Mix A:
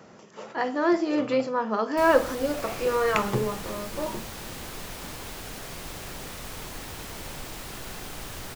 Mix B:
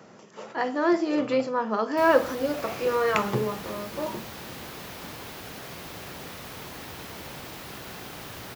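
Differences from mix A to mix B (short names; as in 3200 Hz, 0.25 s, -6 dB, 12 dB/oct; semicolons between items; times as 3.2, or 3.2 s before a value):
background: add bell 8300 Hz -7 dB 0.91 oct; master: add HPF 89 Hz 12 dB/oct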